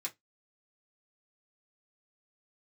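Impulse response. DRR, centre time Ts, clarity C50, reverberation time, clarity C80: -3.5 dB, 9 ms, 22.5 dB, not exponential, 35.5 dB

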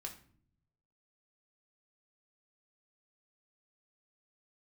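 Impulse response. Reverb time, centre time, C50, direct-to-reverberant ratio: 0.55 s, 14 ms, 11.0 dB, 0.0 dB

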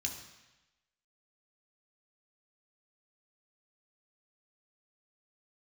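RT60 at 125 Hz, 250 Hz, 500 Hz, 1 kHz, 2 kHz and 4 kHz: 1.0, 1.0, 1.0, 1.1, 1.1, 1.1 s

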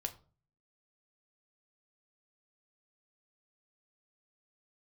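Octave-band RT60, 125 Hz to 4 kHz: 0.70, 0.55, 0.45, 0.35, 0.25, 0.25 s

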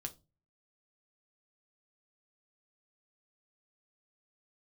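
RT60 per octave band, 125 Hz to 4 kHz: 0.55, 0.40, 0.30, 0.25, 0.20, 0.20 s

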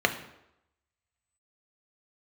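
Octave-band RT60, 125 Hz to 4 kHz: 0.70, 0.75, 0.85, 0.85, 0.75, 0.65 s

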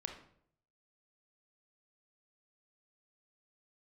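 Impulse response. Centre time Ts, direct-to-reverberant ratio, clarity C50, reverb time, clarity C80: 21 ms, 4.0 dB, 7.0 dB, 0.65 s, 11.0 dB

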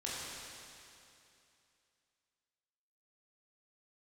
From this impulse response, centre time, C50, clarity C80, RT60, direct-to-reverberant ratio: 0.174 s, -3.0 dB, -1.5 dB, 2.7 s, -7.5 dB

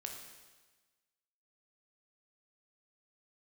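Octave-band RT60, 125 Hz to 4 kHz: 1.3, 1.3, 1.3, 1.3, 1.3, 1.3 s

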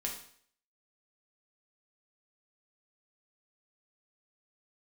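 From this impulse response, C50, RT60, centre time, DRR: 6.0 dB, 0.55 s, 27 ms, -1.5 dB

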